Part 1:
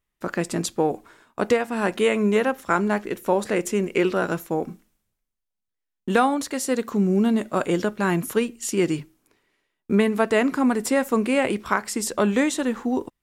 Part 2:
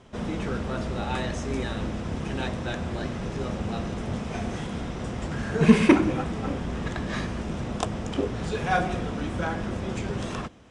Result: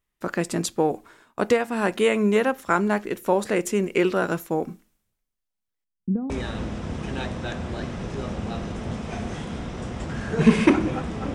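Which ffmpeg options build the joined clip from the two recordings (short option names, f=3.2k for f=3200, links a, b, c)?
-filter_complex "[0:a]asettb=1/sr,asplit=3[a][b][c];[a]atrim=end=5.844[d];[b]atrim=start=5.84:end=6.3,asetpts=PTS-STARTPTS,afade=t=in:d=0.004:c=qsin,afade=t=out:st=0.456:d=0.004:c=qsin,lowpass=f=170:t=q:w=1.7[e];[c]atrim=start=6.296[f];[d][e]acrossfade=d=0.004:c1=hsin:c2=qsin[g];[g][f]acrossfade=d=0.004:c1=qsin:c2=hsin,apad=whole_dur=11.34,atrim=end=11.34,atrim=end=6.302[h];[1:a]atrim=start=1.518:end=6.56[i];[h][i]acrossfade=d=0.004:c1=hsin:c2=hsin"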